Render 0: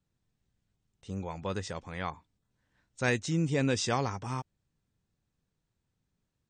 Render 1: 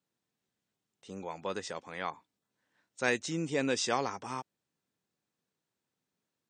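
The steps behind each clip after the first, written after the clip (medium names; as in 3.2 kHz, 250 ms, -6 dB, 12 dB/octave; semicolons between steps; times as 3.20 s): high-pass 270 Hz 12 dB/octave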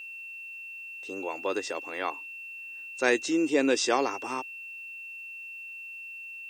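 resonant low shelf 230 Hz -9.5 dB, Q 3; whistle 2.7 kHz -43 dBFS; word length cut 12-bit, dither triangular; trim +4 dB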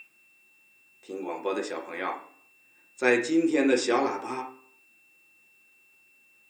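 reverberation RT60 0.55 s, pre-delay 3 ms, DRR 0.5 dB; trim -3.5 dB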